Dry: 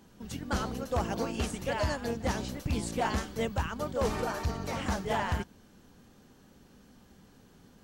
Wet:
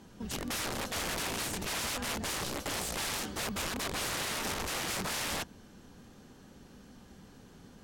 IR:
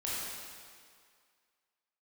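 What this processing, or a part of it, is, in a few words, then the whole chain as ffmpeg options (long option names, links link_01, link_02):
overflowing digital effects unit: -filter_complex "[0:a]asettb=1/sr,asplit=3[link_01][link_02][link_03];[link_01]atrim=end=2.724[link_04];[link_02]atrim=start=2.72:end=3.36,asetpts=PTS-STARTPTS,afade=type=in:duration=0.004:curve=qsin,afade=type=out:start_time=0.636:duration=0.004:curve=qsin,highpass=67[link_05];[link_03]atrim=start=3.356[link_06];[link_04][link_05]acrossfade=duration=0.004:curve1=hsin:curve2=qsin[link_07];[link_07][link_06]acrossfade=duration=0.004:curve1=qsin:curve2=hsin,aeval=exprs='(mod(44.7*val(0)+1,2)-1)/44.7':channel_layout=same,lowpass=13000,volume=3.5dB"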